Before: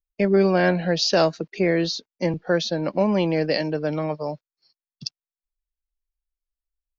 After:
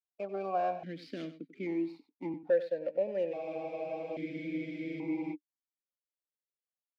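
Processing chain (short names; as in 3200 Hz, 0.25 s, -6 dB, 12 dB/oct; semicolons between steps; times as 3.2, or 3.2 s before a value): median filter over 15 samples; on a send: echo 93 ms -13.5 dB; on the sum: spectral freeze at 3.34, 1.99 s; vowel sequencer 1.2 Hz; gain -2.5 dB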